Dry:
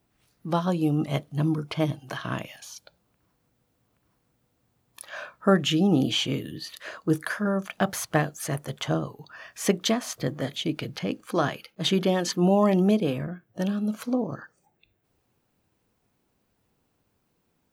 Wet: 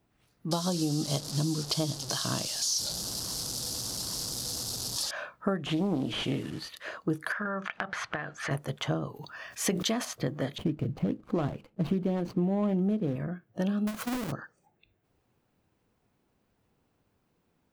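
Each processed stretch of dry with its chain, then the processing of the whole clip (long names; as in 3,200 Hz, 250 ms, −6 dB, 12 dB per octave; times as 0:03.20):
0:00.51–0:05.11: linear delta modulator 64 kbit/s, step −35.5 dBFS + high shelf with overshoot 3,300 Hz +14 dB, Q 3
0:05.66–0:06.69: linear delta modulator 64 kbit/s, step −39 dBFS + highs frequency-modulated by the lows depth 0.31 ms
0:07.32–0:08.51: low-pass filter 5,100 Hz + parametric band 1,600 Hz +14.5 dB 1.9 octaves + downward compressor 16 to 1, threshold −28 dBFS
0:09.14–0:10.05: high-shelf EQ 3,400 Hz +7 dB + level that may fall only so fast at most 81 dB per second
0:10.58–0:13.16: running median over 25 samples + low-shelf EQ 270 Hz +10 dB
0:13.87–0:14.32: each half-wave held at its own peak + high-shelf EQ 6,800 Hz +10.5 dB + downward compressor 12 to 1, threshold −28 dBFS
whole clip: high-shelf EQ 4,300 Hz −6.5 dB; downward compressor 10 to 1, threshold −25 dBFS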